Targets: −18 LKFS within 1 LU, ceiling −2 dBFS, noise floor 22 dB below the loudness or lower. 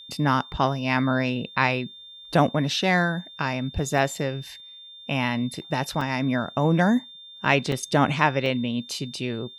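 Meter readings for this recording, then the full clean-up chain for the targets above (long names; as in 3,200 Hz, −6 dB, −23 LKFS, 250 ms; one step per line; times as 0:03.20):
number of dropouts 4; longest dropout 2.4 ms; interfering tone 3,600 Hz; level of the tone −42 dBFS; integrated loudness −24.5 LKFS; sample peak −4.5 dBFS; target loudness −18.0 LKFS
→ repair the gap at 0:03.98/0:06.01/0:07.72/0:08.46, 2.4 ms
notch filter 3,600 Hz, Q 30
level +6.5 dB
brickwall limiter −2 dBFS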